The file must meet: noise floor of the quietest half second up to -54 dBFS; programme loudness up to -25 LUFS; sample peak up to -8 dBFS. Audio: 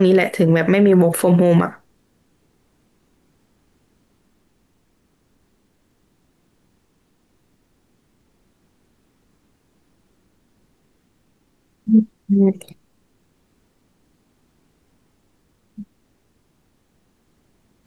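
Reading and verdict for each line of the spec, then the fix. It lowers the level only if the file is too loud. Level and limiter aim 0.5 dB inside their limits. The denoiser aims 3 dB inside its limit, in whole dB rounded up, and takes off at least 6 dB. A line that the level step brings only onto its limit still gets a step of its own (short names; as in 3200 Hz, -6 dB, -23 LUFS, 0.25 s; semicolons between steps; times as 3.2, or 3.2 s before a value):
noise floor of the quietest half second -63 dBFS: OK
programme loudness -16.0 LUFS: fail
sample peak -5.0 dBFS: fail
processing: gain -9.5 dB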